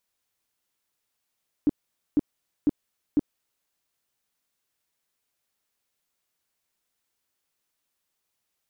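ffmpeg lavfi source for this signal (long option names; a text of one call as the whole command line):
ffmpeg -f lavfi -i "aevalsrc='0.168*sin(2*PI*294*mod(t,0.5))*lt(mod(t,0.5),7/294)':duration=2:sample_rate=44100" out.wav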